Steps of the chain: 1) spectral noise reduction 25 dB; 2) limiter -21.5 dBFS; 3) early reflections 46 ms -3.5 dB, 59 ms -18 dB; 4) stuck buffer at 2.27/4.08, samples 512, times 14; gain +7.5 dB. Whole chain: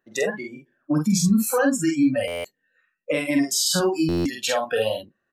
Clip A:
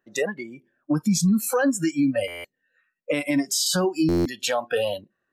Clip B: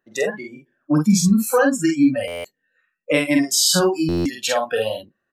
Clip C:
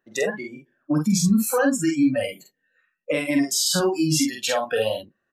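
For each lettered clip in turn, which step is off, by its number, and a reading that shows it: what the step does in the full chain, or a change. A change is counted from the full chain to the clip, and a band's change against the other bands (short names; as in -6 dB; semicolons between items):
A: 3, momentary loudness spread change -1 LU; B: 2, mean gain reduction 1.5 dB; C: 4, momentary loudness spread change -3 LU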